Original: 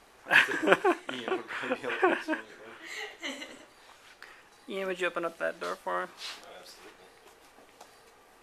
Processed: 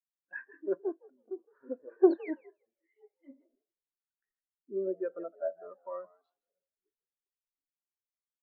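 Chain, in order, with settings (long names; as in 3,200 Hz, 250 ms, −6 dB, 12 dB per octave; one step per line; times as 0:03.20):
adaptive Wiener filter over 9 samples
low-shelf EQ 340 Hz +4.5 dB
automatic gain control gain up to 8 dB
sound drawn into the spectrogram fall, 0:02.10–0:02.31, 1,800–4,600 Hz −18 dBFS
in parallel at −5 dB: soft clipping −13 dBFS, distortion −14 dB
on the sum: phaser swept by the level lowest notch 500 Hz, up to 3,300 Hz, full sweep at −23.5 dBFS
echo with shifted repeats 162 ms, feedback 34%, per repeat +85 Hz, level −9 dB
on a send at −11.5 dB: convolution reverb, pre-delay 3 ms
on the sum: every bin expanded away from the loudest bin 2.5 to 1
level −9 dB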